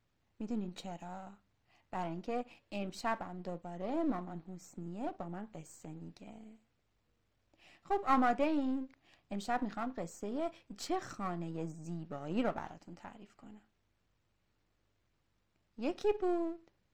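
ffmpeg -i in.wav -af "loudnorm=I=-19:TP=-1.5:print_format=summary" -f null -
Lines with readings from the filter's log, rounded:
Input Integrated:    -37.7 LUFS
Input True Peak:     -15.0 dBTP
Input LRA:             8.1 LU
Input Threshold:     -48.9 LUFS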